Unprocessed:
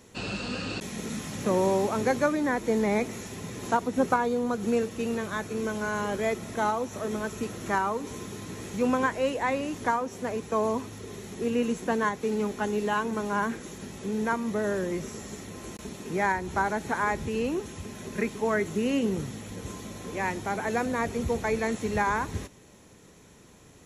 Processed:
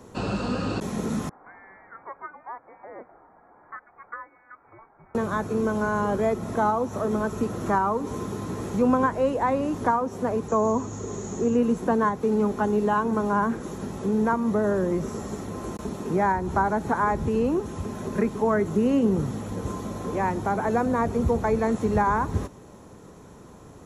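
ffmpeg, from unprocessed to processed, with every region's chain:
ffmpeg -i in.wav -filter_complex "[0:a]asettb=1/sr,asplit=3[link_01][link_02][link_03];[link_01]atrim=end=1.294[link_04];[link_02]atrim=start=1.29:end=5.15,asetpts=PTS-STARTPTS,afade=type=in:duration=0.004:curve=qsin,afade=type=out:start_time=3.856:duration=0.004:curve=qsin,highpass=920,aderivative,lowpass=frequency=2300:width_type=q:width=0.5098,lowpass=frequency=2300:width_type=q:width=0.6013,lowpass=frequency=2300:width_type=q:width=0.9,lowpass=frequency=2300:width_type=q:width=2.563,afreqshift=-2700[link_05];[link_03]atrim=start=5.146[link_06];[link_04][link_05]acrossfade=duration=0.004:curve1=hsin:curve2=qsin[link_07];[link_07][link_06]acrossfade=duration=0.004:curve1=qsin:curve2=hsin,asettb=1/sr,asplit=3[link_08][link_09][link_10];[link_08]atrim=end=10.484[link_11];[link_09]atrim=start=10.48:end=11.57,asetpts=PTS-STARTPTS,afade=type=in:duration=0.004:curve=qsin,afade=type=out:start_time=1.086:duration=0.004:curve=qsin,lowpass=frequency=6800:width_type=q:width=14,highshelf=frequency=3700:gain=-8.5[link_12];[link_10]atrim=start=11.566[link_13];[link_11][link_12]acrossfade=duration=0.004:curve1=hsin:curve2=qsin[link_14];[link_14][link_13]acrossfade=duration=0.004:curve1=qsin:curve2=hsin,highshelf=frequency=1600:width_type=q:width=1.5:gain=-8.5,acrossover=split=220[link_15][link_16];[link_16]acompressor=threshold=-36dB:ratio=1.5[link_17];[link_15][link_17]amix=inputs=2:normalize=0,volume=7.5dB" out.wav

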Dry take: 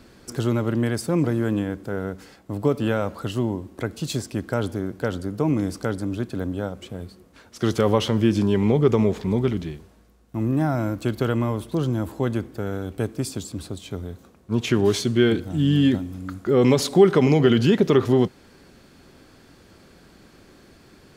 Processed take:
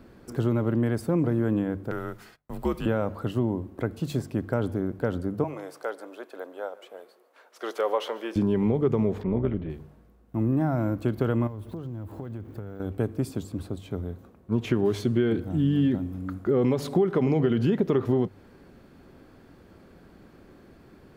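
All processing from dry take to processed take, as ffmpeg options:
ffmpeg -i in.wav -filter_complex "[0:a]asettb=1/sr,asplit=3[link_01][link_02][link_03];[link_01]atrim=end=1.914[link_04];[link_02]atrim=start=1.91:end=2.86,asetpts=PTS-STARTPTS,afade=type=in:duration=0.004:curve=qsin,afade=type=out:start_time=0.946:duration=0.004:curve=qsin,agate=range=-27dB:threshold=-49dB:ratio=16:release=100:detection=peak,tiltshelf=frequency=880:gain=-8,afreqshift=-74[link_05];[link_03]atrim=start=2.856[link_06];[link_04][link_05]acrossfade=duration=0.004:curve1=hsin:curve2=qsin[link_07];[link_07][link_06]acrossfade=duration=0.004:curve1=qsin:curve2=hsin,asettb=1/sr,asplit=3[link_08][link_09][link_10];[link_08]atrim=end=5.444[link_11];[link_09]atrim=start=5.44:end=8.36,asetpts=PTS-STARTPTS,afade=type=in:duration=0.004:curve=qsin,afade=type=out:start_time=2.916:duration=0.004:curve=qsin,highpass=frequency=490:width=0.5412,highpass=frequency=490:width=1.3066,aecho=1:1:145:0.0891,atrim=end_sample=128772[link_12];[link_10]atrim=start=8.356[link_13];[link_11][link_12]acrossfade=duration=0.004:curve1=hsin:curve2=qsin[link_14];[link_14][link_13]acrossfade=duration=0.004:curve1=qsin:curve2=hsin,asettb=1/sr,asplit=3[link_15][link_16][link_17];[link_15]atrim=end=9.234[link_18];[link_16]atrim=start=9.23:end=9.7,asetpts=PTS-STARTPTS,afade=type=in:duration=0.004:curve=qsin,afade=type=out:start_time=0.466:duration=0.004:curve=qsin,lowpass=frequency=3100:width=0.5412,lowpass=frequency=3100:width=1.3066,tremolo=f=190:d=0.621[link_19];[link_17]atrim=start=9.696[link_20];[link_18][link_19]acrossfade=duration=0.004:curve1=hsin:curve2=qsin[link_21];[link_21][link_20]acrossfade=duration=0.004:curve1=qsin:curve2=hsin,asettb=1/sr,asplit=3[link_22][link_23][link_24];[link_22]atrim=end=11.474[link_25];[link_23]atrim=start=11.47:end=12.8,asetpts=PTS-STARTPTS,afade=type=in:duration=0.004:curve=qsin,afade=type=out:start_time=1.326:duration=0.004:curve=qsin,equalizer=frequency=100:width=5.1:gain=11.5,acompressor=threshold=-31dB:ratio=12:attack=3.2:release=140:knee=1:detection=peak,aeval=exprs='val(0)*gte(abs(val(0)),0.00282)':channel_layout=same[link_26];[link_24]atrim=start=12.796[link_27];[link_25][link_26]acrossfade=duration=0.004:curve1=hsin:curve2=qsin[link_28];[link_28][link_27]acrossfade=duration=0.004:curve1=qsin:curve2=hsin,equalizer=frequency=6400:width_type=o:width=2.7:gain=-13.5,bandreject=frequency=49.4:width_type=h:width=4,bandreject=frequency=98.8:width_type=h:width=4,bandreject=frequency=148.2:width_type=h:width=4,acompressor=threshold=-19dB:ratio=6" out.wav

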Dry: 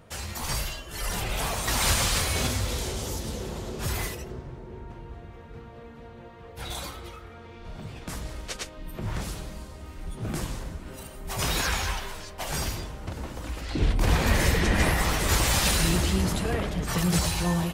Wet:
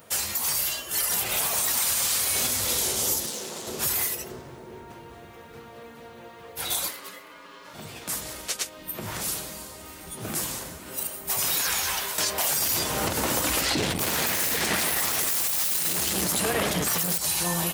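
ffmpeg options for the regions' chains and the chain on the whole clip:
ffmpeg -i in.wav -filter_complex "[0:a]asettb=1/sr,asplit=3[link_01][link_02][link_03];[link_01]atrim=end=3.264[link_04];[link_02]atrim=start=3.26:end=3.67,asetpts=PTS-STARTPTS,afade=type=in:duration=0.004:curve=qsin,afade=type=out:start_time=0.406:duration=0.004:curve=qsin,highpass=170,lowpass=7800,highshelf=frequency=5200:gain=5.5,aeval=exprs='(tanh(35.5*val(0)+0.6)-tanh(0.6))/35.5':channel_layout=same[link_05];[link_03]atrim=start=3.666[link_06];[link_04][link_05]acrossfade=duration=0.004:curve1=hsin:curve2=qsin[link_07];[link_07][link_06]acrossfade=duration=0.004:curve1=qsin:curve2=hsin,asettb=1/sr,asplit=3[link_08][link_09][link_10];[link_08]atrim=end=6.884[link_11];[link_09]atrim=start=6.88:end=7.74,asetpts=PTS-STARTPTS,afade=type=in:duration=0.004:curve=qsin,afade=type=out:start_time=0.856:duration=0.004:curve=qsin,highpass=frequency=130:width=0.5412,highpass=frequency=130:width=1.3066,aeval=exprs='val(0)*sin(2*PI*750*n/s)':channel_layout=same[link_12];[link_10]atrim=start=7.736[link_13];[link_11][link_12]acrossfade=duration=0.004:curve1=hsin:curve2=qsin[link_14];[link_14][link_13]acrossfade=duration=0.004:curve1=qsin:curve2=hsin,asettb=1/sr,asplit=3[link_15][link_16][link_17];[link_15]atrim=end=12.184[link_18];[link_16]atrim=start=12.18:end=17.18,asetpts=PTS-STARTPTS,afade=type=in:duration=0.004:curve=qsin,afade=type=out:start_time=4.996:duration=0.004:curve=qsin,aeval=exprs='0.355*sin(PI/2*3.98*val(0)/0.355)':channel_layout=same,highpass=54[link_19];[link_17]atrim=start=17.176[link_20];[link_18][link_19]acrossfade=duration=0.004:curve1=hsin:curve2=qsin[link_21];[link_21][link_20]acrossfade=duration=0.004:curve1=qsin:curve2=hsin,highpass=63,aemphasis=mode=production:type=bsi,alimiter=limit=-18.5dB:level=0:latency=1:release=207,volume=3.5dB" out.wav

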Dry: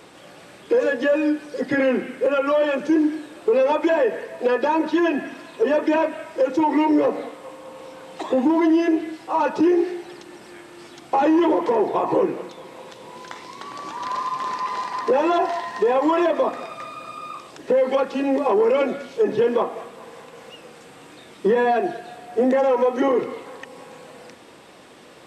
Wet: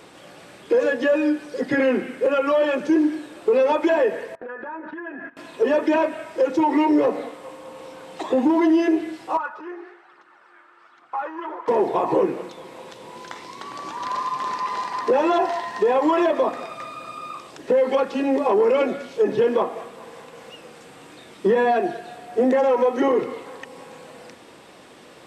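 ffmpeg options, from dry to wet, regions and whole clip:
ffmpeg -i in.wav -filter_complex "[0:a]asettb=1/sr,asplit=3[link_01][link_02][link_03];[link_01]atrim=end=4.354[link_04];[link_02]atrim=start=4.35:end=5.37,asetpts=PTS-STARTPTS,afade=type=in:duration=0.004:curve=qsin,afade=type=out:start_time=1.016:duration=0.004:curve=qsin,agate=range=-22dB:threshold=-32dB:ratio=16:release=100:detection=peak,acompressor=threshold=-33dB:ratio=12:attack=3.2:release=140:knee=1:detection=peak,lowpass=frequency=1600:width_type=q:width=3.5[link_05];[link_03]atrim=start=5.366[link_06];[link_04][link_05]acrossfade=duration=0.004:curve1=hsin:curve2=qsin[link_07];[link_07][link_06]acrossfade=duration=0.004:curve1=qsin:curve2=hsin,asettb=1/sr,asplit=3[link_08][link_09][link_10];[link_08]atrim=end=9.374[link_11];[link_09]atrim=start=9.37:end=11.68,asetpts=PTS-STARTPTS,afade=type=in:duration=0.004:curve=qsin,afade=type=out:start_time=2.306:duration=0.004:curve=qsin,bandpass=frequency=1300:width_type=q:width=3.3,aphaser=in_gain=1:out_gain=1:delay=3.5:decay=0.36:speed=1.2:type=triangular[link_12];[link_10]atrim=start=11.676[link_13];[link_11][link_12]acrossfade=duration=0.004:curve1=hsin:curve2=qsin[link_14];[link_14][link_13]acrossfade=duration=0.004:curve1=qsin:curve2=hsin" out.wav

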